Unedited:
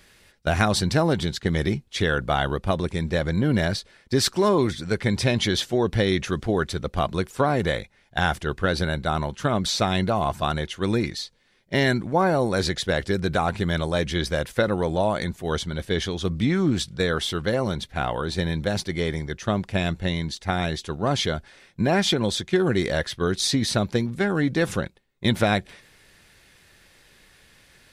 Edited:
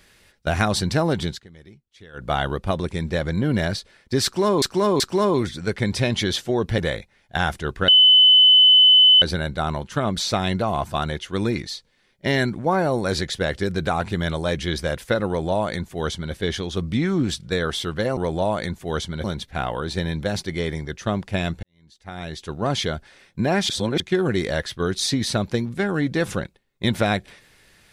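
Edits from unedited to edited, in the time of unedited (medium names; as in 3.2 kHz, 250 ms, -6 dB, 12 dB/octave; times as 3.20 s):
1.28–2.31 s: dip -23 dB, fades 0.18 s
4.24–4.62 s: loop, 3 plays
6.02–7.60 s: delete
8.70 s: add tone 3.02 kHz -9 dBFS 1.34 s
14.75–15.82 s: copy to 17.65 s
20.04–20.96 s: fade in quadratic
22.10–22.41 s: reverse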